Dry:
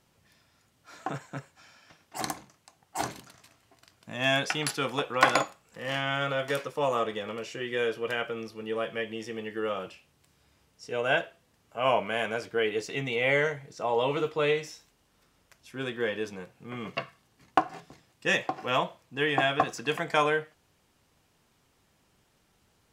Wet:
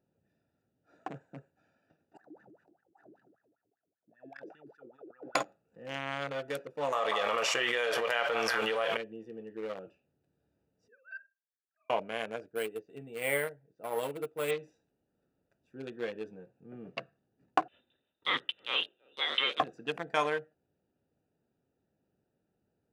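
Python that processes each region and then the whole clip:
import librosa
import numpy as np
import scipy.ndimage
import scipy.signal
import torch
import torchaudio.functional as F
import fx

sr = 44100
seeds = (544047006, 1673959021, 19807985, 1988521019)

y = fx.chain(x, sr, fx.bass_treble(bass_db=12, treble_db=12),
    fx.wah_lfo(hz=5.1, low_hz=310.0, high_hz=1800.0, q=15.0),
    fx.sustainer(db_per_s=42.0), at=(2.17, 5.35))
y = fx.chain(y, sr, fx.low_shelf_res(hz=450.0, db=-12.0, q=1.5),
    fx.echo_stepped(ms=190, hz=910.0, octaves=0.7, feedback_pct=70, wet_db=-11.0),
    fx.env_flatten(amount_pct=100), at=(6.92, 8.97))
y = fx.chain(y, sr, fx.sine_speech(),
    fx.double_bandpass(hz=630.0, octaves=2.8),
    fx.doubler(ms=48.0, db=-13.0), at=(10.88, 11.9))
y = fx.chain(y, sr, fx.resample_bad(factor=4, down='filtered', up='hold'),
    fx.upward_expand(threshold_db=-41.0, expansion=1.5), at=(12.46, 14.51))
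y = fx.chain(y, sr, fx.echo_single(ms=325, db=-20.5),
    fx.freq_invert(carrier_hz=3800),
    fx.doppler_dist(depth_ms=0.11), at=(17.68, 19.6))
y = fx.wiener(y, sr, points=41)
y = fx.highpass(y, sr, hz=250.0, slope=6)
y = y * 10.0 ** (-3.5 / 20.0)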